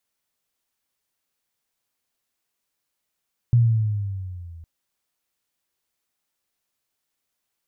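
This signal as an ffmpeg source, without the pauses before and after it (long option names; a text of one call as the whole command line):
ffmpeg -f lavfi -i "aevalsrc='pow(10,(-11.5-27*t/1.11)/20)*sin(2*PI*121*1.11/(-7*log(2)/12)*(exp(-7*log(2)/12*t/1.11)-1))':duration=1.11:sample_rate=44100" out.wav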